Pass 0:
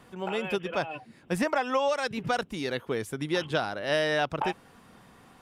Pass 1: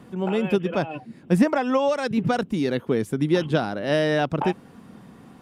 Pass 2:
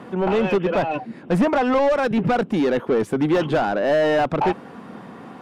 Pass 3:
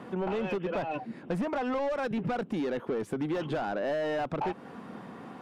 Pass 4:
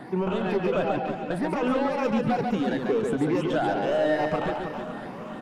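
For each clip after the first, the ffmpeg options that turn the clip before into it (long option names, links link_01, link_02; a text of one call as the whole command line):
ffmpeg -i in.wav -af "equalizer=frequency=210:width=0.55:gain=12.5" out.wav
ffmpeg -i in.wav -filter_complex "[0:a]asplit=2[link_01][link_02];[link_02]highpass=frequency=720:poles=1,volume=25dB,asoftclip=type=tanh:threshold=-7dB[link_03];[link_01][link_03]amix=inputs=2:normalize=0,lowpass=frequency=1100:poles=1,volume=-6dB,volume=-2.5dB" out.wav
ffmpeg -i in.wav -af "acompressor=threshold=-24dB:ratio=4,volume=-5.5dB" out.wav
ffmpeg -i in.wav -filter_complex "[0:a]afftfilt=real='re*pow(10,11/40*sin(2*PI*(0.8*log(max(b,1)*sr/1024/100)/log(2)-(2.2)*(pts-256)/sr)))':imag='im*pow(10,11/40*sin(2*PI*(0.8*log(max(b,1)*sr/1024/100)/log(2)-(2.2)*(pts-256)/sr)))':win_size=1024:overlap=0.75,asplit=2[link_01][link_02];[link_02]aecho=0:1:140|322|558.6|866.2|1266:0.631|0.398|0.251|0.158|0.1[link_03];[link_01][link_03]amix=inputs=2:normalize=0,volume=2.5dB" out.wav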